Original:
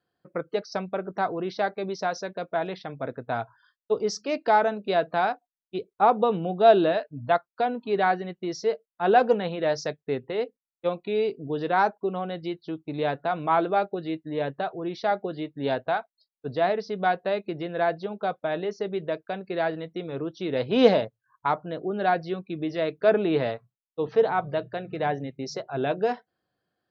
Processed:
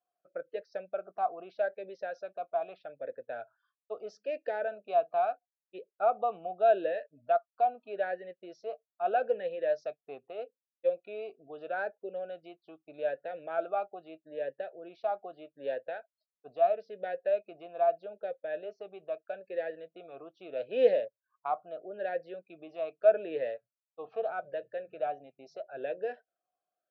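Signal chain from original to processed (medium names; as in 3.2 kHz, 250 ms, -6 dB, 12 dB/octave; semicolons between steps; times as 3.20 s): talking filter a-e 0.79 Hz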